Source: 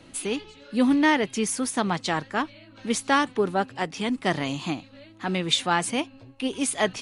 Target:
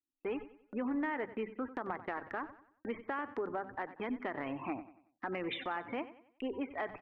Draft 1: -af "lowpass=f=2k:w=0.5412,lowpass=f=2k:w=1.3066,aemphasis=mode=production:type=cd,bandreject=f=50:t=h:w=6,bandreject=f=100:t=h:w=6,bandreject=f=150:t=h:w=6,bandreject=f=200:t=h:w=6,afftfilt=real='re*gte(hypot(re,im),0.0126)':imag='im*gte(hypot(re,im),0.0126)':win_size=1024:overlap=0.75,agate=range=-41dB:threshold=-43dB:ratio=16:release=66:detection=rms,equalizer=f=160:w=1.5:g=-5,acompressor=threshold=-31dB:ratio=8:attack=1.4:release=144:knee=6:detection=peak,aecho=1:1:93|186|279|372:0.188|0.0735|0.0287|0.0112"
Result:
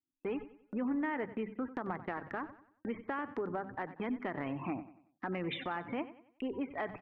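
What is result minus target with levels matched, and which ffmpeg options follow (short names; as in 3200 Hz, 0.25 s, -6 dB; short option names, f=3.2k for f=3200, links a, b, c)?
125 Hz band +6.5 dB
-af "lowpass=f=2k:w=0.5412,lowpass=f=2k:w=1.3066,aemphasis=mode=production:type=cd,bandreject=f=50:t=h:w=6,bandreject=f=100:t=h:w=6,bandreject=f=150:t=h:w=6,bandreject=f=200:t=h:w=6,afftfilt=real='re*gte(hypot(re,im),0.0126)':imag='im*gte(hypot(re,im),0.0126)':win_size=1024:overlap=0.75,agate=range=-41dB:threshold=-43dB:ratio=16:release=66:detection=rms,equalizer=f=160:w=1.5:g=-16.5,acompressor=threshold=-31dB:ratio=8:attack=1.4:release=144:knee=6:detection=peak,aecho=1:1:93|186|279|372:0.188|0.0735|0.0287|0.0112"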